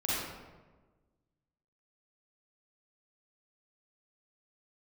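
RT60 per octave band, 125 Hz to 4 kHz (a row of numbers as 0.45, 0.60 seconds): 1.7, 1.6, 1.4, 1.2, 1.0, 0.75 seconds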